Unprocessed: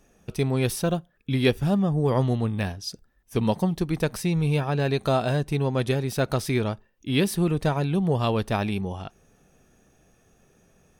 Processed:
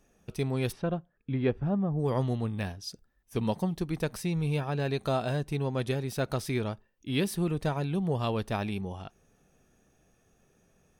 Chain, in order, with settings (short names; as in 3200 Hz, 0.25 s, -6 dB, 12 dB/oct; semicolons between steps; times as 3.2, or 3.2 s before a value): 0.71–1.98 LPF 2300 Hz -> 1300 Hz 12 dB/oct; gain -6 dB